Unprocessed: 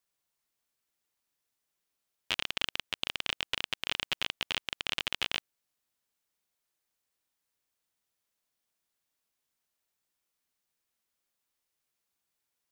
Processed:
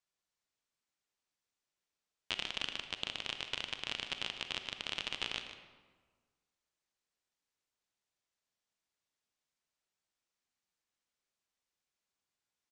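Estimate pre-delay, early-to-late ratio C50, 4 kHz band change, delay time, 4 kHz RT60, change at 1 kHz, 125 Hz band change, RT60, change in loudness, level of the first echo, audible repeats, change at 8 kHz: 32 ms, 7.0 dB, -5.0 dB, 0.151 s, 0.95 s, -5.0 dB, -3.5 dB, 1.6 s, -5.5 dB, -12.0 dB, 1, -5.5 dB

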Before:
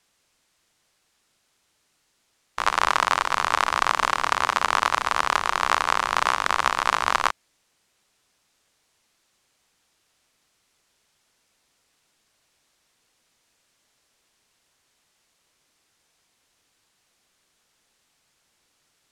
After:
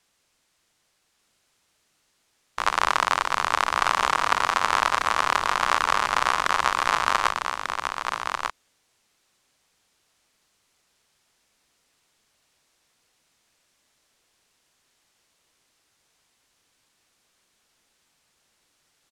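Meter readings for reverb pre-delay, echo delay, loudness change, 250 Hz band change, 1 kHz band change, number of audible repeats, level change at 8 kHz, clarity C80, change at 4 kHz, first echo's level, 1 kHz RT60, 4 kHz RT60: none, 1.193 s, -1.0 dB, 0.0 dB, 0.0 dB, 1, 0.0 dB, none, 0.0 dB, -5.5 dB, none, none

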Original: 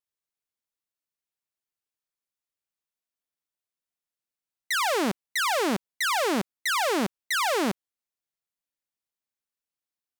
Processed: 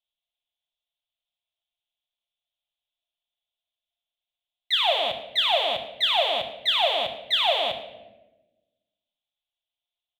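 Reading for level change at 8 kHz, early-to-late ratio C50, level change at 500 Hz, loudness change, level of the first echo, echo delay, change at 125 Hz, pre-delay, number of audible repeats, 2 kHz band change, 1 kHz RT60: under -15 dB, 8.5 dB, +1.5 dB, +3.5 dB, -16.5 dB, 0.106 s, under -10 dB, 6 ms, 1, -2.5 dB, 0.90 s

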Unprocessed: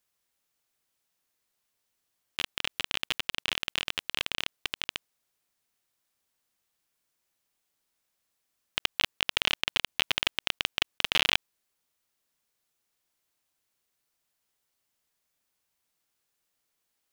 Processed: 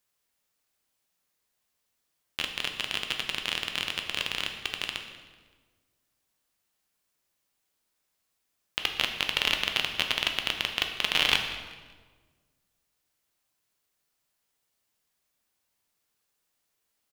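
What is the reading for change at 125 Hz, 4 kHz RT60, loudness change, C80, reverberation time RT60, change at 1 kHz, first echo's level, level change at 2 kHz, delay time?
+2.0 dB, 1.1 s, +1.0 dB, 8.0 dB, 1.5 s, +1.5 dB, -19.0 dB, +1.5 dB, 0.19 s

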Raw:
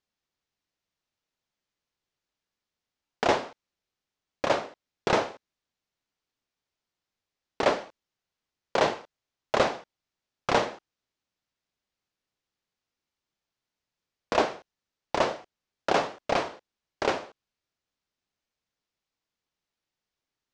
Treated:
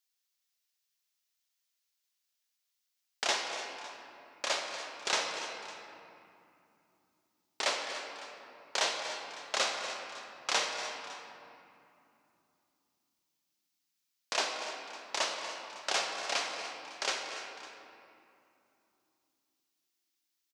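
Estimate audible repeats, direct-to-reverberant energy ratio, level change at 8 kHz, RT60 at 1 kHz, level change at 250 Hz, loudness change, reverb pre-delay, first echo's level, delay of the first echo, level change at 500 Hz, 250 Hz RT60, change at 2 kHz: 3, 2.0 dB, +7.5 dB, 2.7 s, -17.0 dB, -6.0 dB, 3 ms, -14.5 dB, 0.239 s, -12.0 dB, 4.3 s, -2.0 dB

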